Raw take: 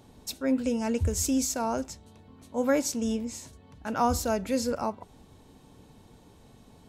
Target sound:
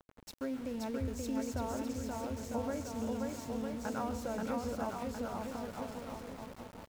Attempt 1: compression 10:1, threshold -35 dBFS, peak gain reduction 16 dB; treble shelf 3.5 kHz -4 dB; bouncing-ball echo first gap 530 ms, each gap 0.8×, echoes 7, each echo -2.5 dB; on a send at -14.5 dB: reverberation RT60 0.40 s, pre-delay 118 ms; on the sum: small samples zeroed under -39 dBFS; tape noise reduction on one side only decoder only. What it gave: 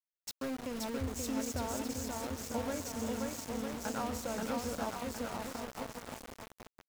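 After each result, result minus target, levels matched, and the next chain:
8 kHz band +6.5 dB; small samples zeroed: distortion +9 dB
compression 10:1, threshold -35 dBFS, peak gain reduction 16 dB; treble shelf 3.5 kHz -13.5 dB; bouncing-ball echo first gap 530 ms, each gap 0.8×, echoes 7, each echo -2.5 dB; on a send at -14.5 dB: reverberation RT60 0.40 s, pre-delay 118 ms; on the sum: small samples zeroed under -39 dBFS; tape noise reduction on one side only decoder only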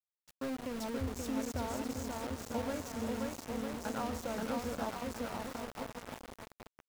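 small samples zeroed: distortion +9 dB
compression 10:1, threshold -35 dBFS, peak gain reduction 16 dB; treble shelf 3.5 kHz -13.5 dB; bouncing-ball echo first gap 530 ms, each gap 0.8×, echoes 7, each echo -2.5 dB; on a send at -14.5 dB: reverberation RT60 0.40 s, pre-delay 118 ms; on the sum: small samples zeroed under -46.5 dBFS; tape noise reduction on one side only decoder only

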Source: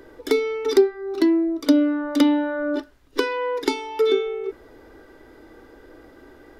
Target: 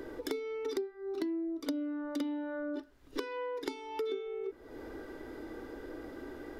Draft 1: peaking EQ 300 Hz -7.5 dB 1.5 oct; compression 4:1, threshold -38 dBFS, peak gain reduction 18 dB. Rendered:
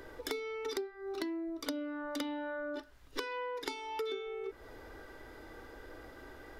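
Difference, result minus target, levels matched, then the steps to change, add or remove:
250 Hz band -4.0 dB
change: peaking EQ 300 Hz +4 dB 1.5 oct

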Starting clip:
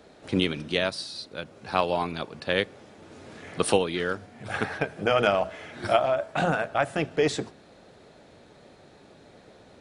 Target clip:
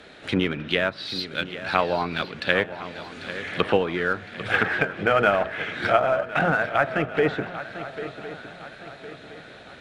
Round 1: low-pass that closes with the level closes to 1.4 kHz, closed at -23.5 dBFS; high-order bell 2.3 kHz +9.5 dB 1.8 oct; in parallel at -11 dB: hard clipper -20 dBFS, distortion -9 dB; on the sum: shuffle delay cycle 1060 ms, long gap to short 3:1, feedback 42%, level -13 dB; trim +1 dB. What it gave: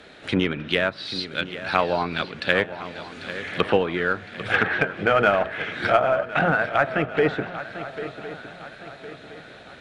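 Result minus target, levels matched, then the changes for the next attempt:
hard clipper: distortion -7 dB
change: hard clipper -31 dBFS, distortion -2 dB

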